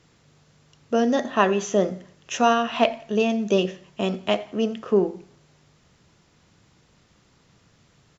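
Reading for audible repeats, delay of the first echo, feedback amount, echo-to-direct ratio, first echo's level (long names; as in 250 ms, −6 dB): 2, 87 ms, 40%, −22.0 dB, −22.5 dB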